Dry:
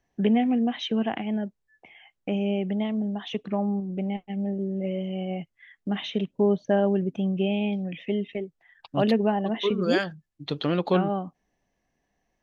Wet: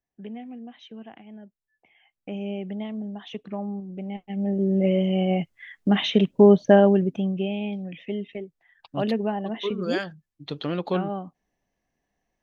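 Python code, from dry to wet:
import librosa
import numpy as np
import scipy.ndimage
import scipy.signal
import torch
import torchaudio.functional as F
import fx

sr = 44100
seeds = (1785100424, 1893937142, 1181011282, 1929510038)

y = fx.gain(x, sr, db=fx.line((1.31, -16.0), (2.44, -5.0), (4.05, -5.0), (4.73, 8.0), (6.71, 8.0), (7.52, -3.0)))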